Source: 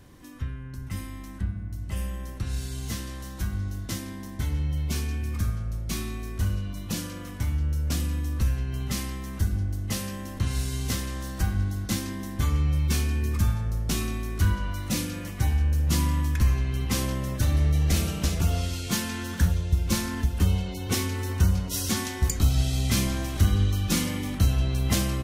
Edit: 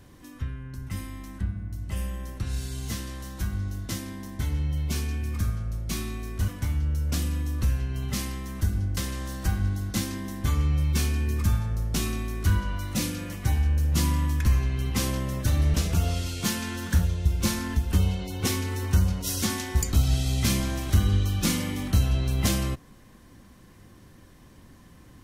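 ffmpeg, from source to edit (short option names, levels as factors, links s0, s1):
-filter_complex "[0:a]asplit=4[s0][s1][s2][s3];[s0]atrim=end=6.482[s4];[s1]atrim=start=7.258:end=9.752[s5];[s2]atrim=start=10.918:end=17.692[s6];[s3]atrim=start=18.208[s7];[s4][s5]acrossfade=d=0.004:c1=hsin:c2=hsin[s8];[s8][s6]acrossfade=d=0.004:c1=hsin:c2=hsin[s9];[s9][s7]acrossfade=d=0.004:c1=hsin:c2=hsin"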